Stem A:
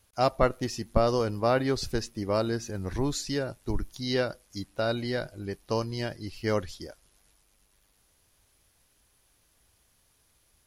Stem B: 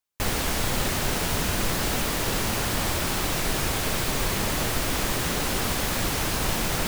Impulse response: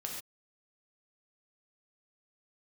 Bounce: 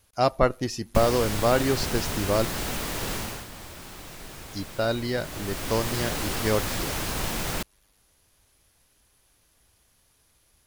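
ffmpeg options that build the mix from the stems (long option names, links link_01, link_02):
-filter_complex "[0:a]volume=2.5dB,asplit=3[link_01][link_02][link_03];[link_01]atrim=end=2.45,asetpts=PTS-STARTPTS,afade=type=out:start_time=2.446:duration=0.004:curve=hsin[link_04];[link_02]atrim=start=2.45:end=4.49,asetpts=PTS-STARTPTS,volume=0[link_05];[link_03]atrim=start=4.49,asetpts=PTS-STARTPTS,afade=type=in:duration=0.004:curve=hsin[link_06];[link_04][link_05][link_06]concat=n=3:v=0:a=1[link_07];[1:a]adelay=750,volume=8dB,afade=type=out:start_time=3.15:duration=0.32:silence=0.266073,afade=type=in:start_time=5.16:duration=0.78:silence=0.237137[link_08];[link_07][link_08]amix=inputs=2:normalize=0"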